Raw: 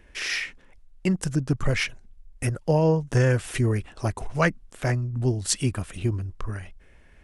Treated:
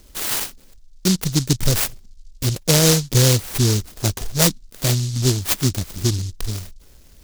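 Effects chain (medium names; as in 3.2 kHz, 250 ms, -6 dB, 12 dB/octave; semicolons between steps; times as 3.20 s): delay time shaken by noise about 5.2 kHz, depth 0.3 ms; trim +5.5 dB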